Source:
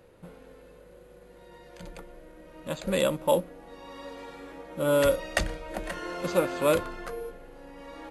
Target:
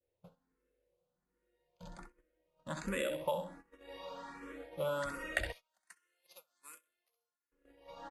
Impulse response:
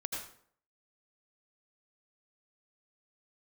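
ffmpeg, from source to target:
-filter_complex "[0:a]aecho=1:1:65|130|195:0.473|0.128|0.0345,acompressor=threshold=0.0501:ratio=20,asettb=1/sr,asplit=3[s0][s1][s2];[s0]atrim=end=5.524[s3];[s1]atrim=start=5.52:end=7.52,asetpts=PTS-STARTPTS,afade=t=in:d=0.004:c=qsin,afade=t=out:st=1.996:d=0.004:c=qsin,aderivative[s4];[s2]atrim=start=7.516[s5];[s3][s4]acrossfade=d=0.004:c1=hsin:c2=qsin[s6];[s6][s5]acrossfade=d=0.004:c1=qsin:c2=hsin,agate=range=0.0631:threshold=0.00708:ratio=16:detection=peak,adynamicequalizer=threshold=0.00316:dfrequency=1600:dqfactor=0.81:tfrequency=1600:tqfactor=0.81:attack=5:release=100:ratio=0.375:range=3:mode=boostabove:tftype=bell,asplit=2[s7][s8];[s8]afreqshift=1.3[s9];[s7][s9]amix=inputs=2:normalize=1,volume=0.562"

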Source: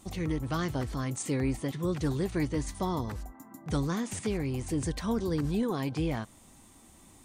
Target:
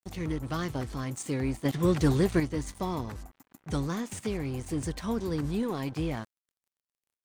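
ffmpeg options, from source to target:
-filter_complex "[0:a]aeval=exprs='sgn(val(0))*max(abs(val(0))-0.00473,0)':c=same,asettb=1/sr,asplit=3[s0][s1][s2];[s0]atrim=end=1.654[s3];[s1]atrim=start=1.65:end=2.4,asetpts=PTS-STARTPTS,afade=t=in:d=0.004:c=qsin,afade=t=out:st=0.746:d=0.004:c=qsin,acontrast=80[s4];[s2]atrim=start=2.396[s5];[s3][s4]acrossfade=d=0.004:c1=hsin:c2=qsin[s6];[s6][s5]acrossfade=d=0.004:c1=qsin:c2=hsin"

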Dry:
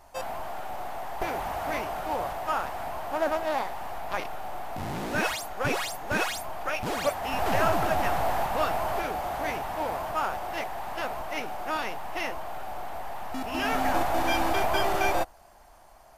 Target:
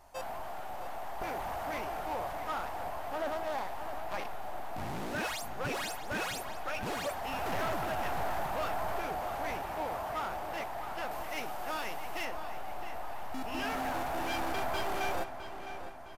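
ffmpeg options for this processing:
-filter_complex "[0:a]asettb=1/sr,asplit=3[s0][s1][s2];[s0]atrim=end=11.114[s3];[s1]atrim=start=11.11:end=12.25,asetpts=PTS-STARTPTS,afade=t=in:d=0.004:c=qsin,afade=t=out:st=1.136:d=0.004:c=qsin,highshelf=f=3900:g=7[s4];[s2]atrim=start=12.246[s5];[s3][s4]acrossfade=d=0.004:c1=hsin:c2=qsin[s6];[s6][s5]acrossfade=d=0.004:c1=qsin:c2=hsin,asoftclip=type=tanh:threshold=0.0596,asplit=2[s7][s8];[s8]adelay=660,lowpass=f=4700:p=1,volume=0.316,asplit=2[s9][s10];[s10]adelay=660,lowpass=f=4700:p=1,volume=0.52,asplit=2[s11][s12];[s12]adelay=660,lowpass=f=4700:p=1,volume=0.52,asplit=2[s13][s14];[s14]adelay=660,lowpass=f=4700:p=1,volume=0.52,asplit=2[s15][s16];[s16]adelay=660,lowpass=f=4700:p=1,volume=0.52,asplit=2[s17][s18];[s18]adelay=660,lowpass=f=4700:p=1,volume=0.52[s19];[s7][s9][s11][s13][s15][s17][s19]amix=inputs=7:normalize=0,volume=0.596"

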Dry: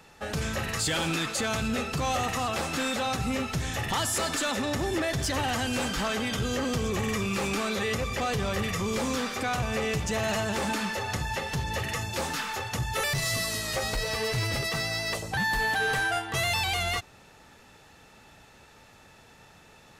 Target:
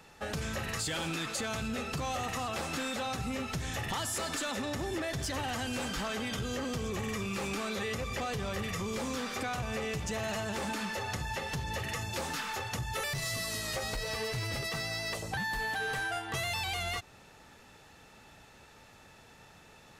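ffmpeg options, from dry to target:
-af "acompressor=threshold=0.0316:ratio=6,volume=0.794"

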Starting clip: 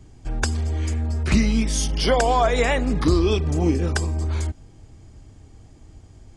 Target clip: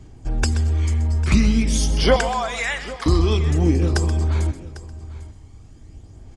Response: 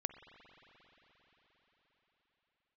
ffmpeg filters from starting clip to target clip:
-filter_complex "[0:a]asettb=1/sr,asplit=3[s0][s1][s2];[s0]atrim=end=2.164[s3];[s1]atrim=start=2.16:end=3.06,asetpts=PTS-STARTPTS,afade=t=in:d=0.004:c=qsin,afade=t=out:st=0.896:d=0.004:c=qsin,highpass=1100[s4];[s2]atrim=start=3.056[s5];[s3][s4]acrossfade=d=0.004:c1=hsin:c2=qsin[s6];[s6][s5]acrossfade=d=0.004:c1=qsin:c2=hsin,aphaser=in_gain=1:out_gain=1:delay=1:decay=0.35:speed=0.47:type=sinusoidal,aecho=1:1:799:0.133,asplit=2[s7][s8];[1:a]atrim=start_sample=2205,afade=t=out:st=0.31:d=0.01,atrim=end_sample=14112,adelay=129[s9];[s8][s9]afir=irnorm=-1:irlink=0,volume=0.299[s10];[s7][s10]amix=inputs=2:normalize=0"

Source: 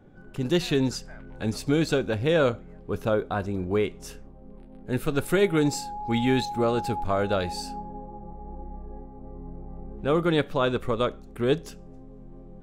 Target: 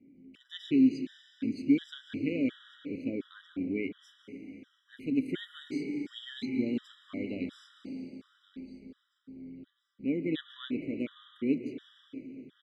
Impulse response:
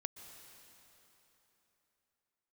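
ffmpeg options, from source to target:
-filter_complex "[0:a]asplit=3[s0][s1][s2];[s0]bandpass=f=270:t=q:w=8,volume=1[s3];[s1]bandpass=f=2290:t=q:w=8,volume=0.501[s4];[s2]bandpass=f=3010:t=q:w=8,volume=0.355[s5];[s3][s4][s5]amix=inputs=3:normalize=0,aecho=1:1:1133|2266|3399:0.126|0.0428|0.0146[s6];[1:a]atrim=start_sample=2205[s7];[s6][s7]afir=irnorm=-1:irlink=0,afftfilt=real='re*gt(sin(2*PI*1.4*pts/sr)*(1-2*mod(floor(b*sr/1024/990),2)),0)':imag='im*gt(sin(2*PI*1.4*pts/sr)*(1-2*mod(floor(b*sr/1024/990),2)),0)':win_size=1024:overlap=0.75,volume=2.66"

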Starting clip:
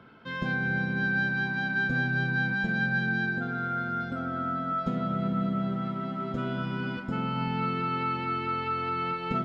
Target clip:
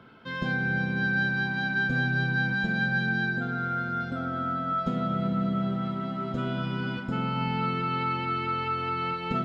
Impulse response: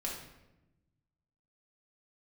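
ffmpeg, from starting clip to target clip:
-filter_complex "[0:a]asplit=2[s0][s1];[s1]highshelf=f=2200:t=q:w=1.5:g=8.5[s2];[1:a]atrim=start_sample=2205,asetrate=23373,aresample=44100[s3];[s2][s3]afir=irnorm=-1:irlink=0,volume=0.1[s4];[s0][s4]amix=inputs=2:normalize=0"

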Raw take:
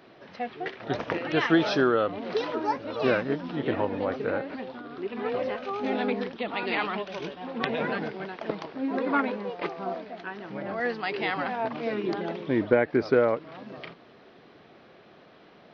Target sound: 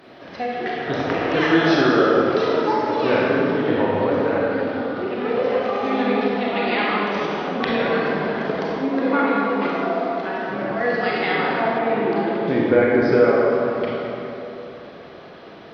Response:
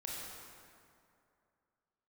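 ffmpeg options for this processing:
-filter_complex "[1:a]atrim=start_sample=2205,asetrate=39249,aresample=44100[s0];[0:a][s0]afir=irnorm=-1:irlink=0,asplit=2[s1][s2];[s2]acompressor=threshold=0.0178:ratio=6,volume=1[s3];[s1][s3]amix=inputs=2:normalize=0,asettb=1/sr,asplit=3[s4][s5][s6];[s4]atrim=end=11.784[s7];[s5]atrim=start=11.78:end=12.48,asetpts=PTS-STARTPTS,afade=t=in:d=0.004:c=qsin,afade=t=out:st=0.696:d=0.004:c=qsin,lowpass=3300[s8];[s6]atrim=start=12.476[s9];[s7][s8]acrossfade=d=0.004:c1=hsin:c2=qsin[s10];[s10][s9]acrossfade=d=0.004:c1=qsin:c2=hsin,volume=1.78"

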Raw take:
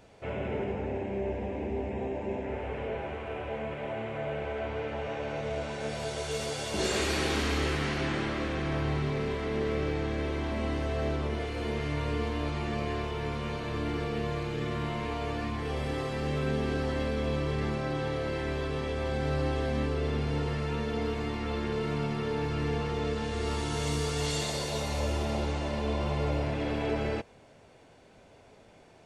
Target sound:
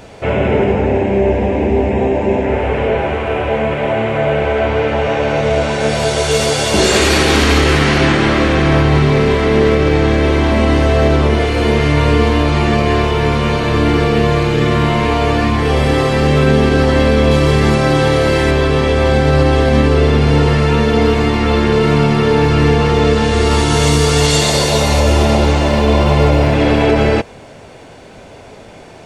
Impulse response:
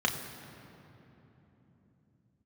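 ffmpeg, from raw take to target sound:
-filter_complex "[0:a]asettb=1/sr,asplit=3[s0][s1][s2];[s0]atrim=end=17.314[s3];[s1]atrim=start=17.31:end=18.51,asetpts=PTS-STARTPTS,afade=t=in:d=0.004:c=qsin,afade=t=out:st=1.196:d=0.004:c=qsin,highshelf=f=6400:g=10[s4];[s2]atrim=start=18.506[s5];[s3][s4]acrossfade=d=0.004:c1=hsin:c2=qsin[s6];[s6][s5]acrossfade=d=0.004:c1=qsin:c2=hsin,asettb=1/sr,asplit=3[s7][s8][s9];[s7]atrim=end=25.434[s10];[s8]atrim=start=25.43:end=26.55,asetpts=PTS-STARTPTS,afade=t=in:d=0.004:c=qsin,afade=t=out:st=1.116:d=0.004:c=qsin,aeval=exprs='sgn(val(0))*max(abs(val(0))-0.00126,0)':c=same[s11];[s9]atrim=start=26.546[s12];[s10][s11]acrossfade=d=0.004:c1=hsin:c2=qsin[s13];[s13][s12]acrossfade=d=0.004:c1=qsin:c2=hsin,alimiter=level_in=10.6:limit=0.891:release=50:level=0:latency=1,volume=0.891"

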